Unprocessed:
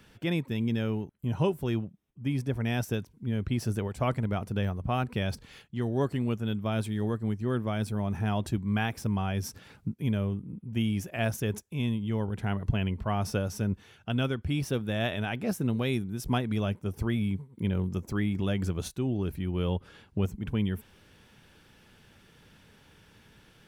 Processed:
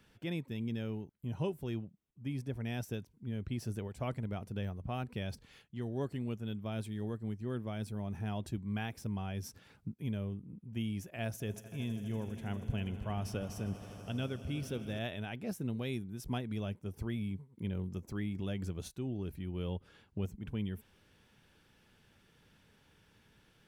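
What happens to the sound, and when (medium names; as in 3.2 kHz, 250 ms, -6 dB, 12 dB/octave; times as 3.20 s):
11.24–14.99 s: echo with a slow build-up 80 ms, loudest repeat 5, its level -18 dB
whole clip: dynamic bell 1.2 kHz, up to -4 dB, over -48 dBFS, Q 1.3; trim -8.5 dB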